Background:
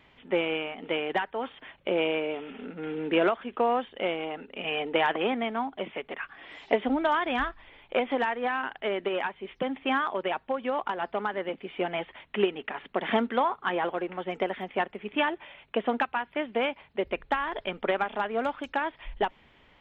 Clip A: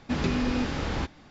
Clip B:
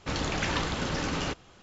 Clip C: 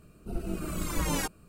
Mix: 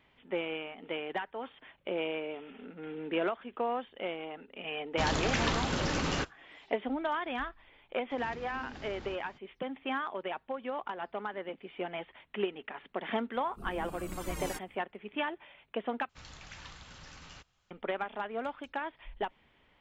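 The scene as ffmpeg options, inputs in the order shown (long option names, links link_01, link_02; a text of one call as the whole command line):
ffmpeg -i bed.wav -i cue0.wav -i cue1.wav -i cue2.wav -filter_complex "[2:a]asplit=2[link_01][link_02];[0:a]volume=-7.5dB[link_03];[link_01]agate=range=-33dB:threshold=-43dB:ratio=3:release=100:detection=peak[link_04];[1:a]acompressor=threshold=-37dB:ratio=12:attack=3:release=61:knee=1:detection=peak[link_05];[link_02]equalizer=frequency=340:width=0.61:gain=-13[link_06];[link_03]asplit=2[link_07][link_08];[link_07]atrim=end=16.094[link_09];[link_06]atrim=end=1.62,asetpts=PTS-STARTPTS,volume=-16.5dB[link_10];[link_08]atrim=start=17.706[link_11];[link_04]atrim=end=1.62,asetpts=PTS-STARTPTS,volume=-1dB,afade=type=in:duration=0.004:curve=hsin,afade=type=out:start_time=1.616:duration=0.004:curve=hsin,adelay=4910[link_12];[link_05]atrim=end=1.3,asetpts=PTS-STARTPTS,volume=-6.5dB,afade=type=in:duration=0.02,afade=type=out:start_time=1.28:duration=0.02,adelay=8090[link_13];[3:a]atrim=end=1.48,asetpts=PTS-STARTPTS,volume=-9.5dB,afade=type=in:duration=0.05,afade=type=out:start_time=1.43:duration=0.05,adelay=13310[link_14];[link_09][link_10]acrossfade=duration=0.004:curve1=hsin:curve2=hsin[link_15];[link_15][link_11]acrossfade=duration=0.004:curve1=hsin:curve2=hsin[link_16];[link_16][link_12][link_13][link_14]amix=inputs=4:normalize=0" out.wav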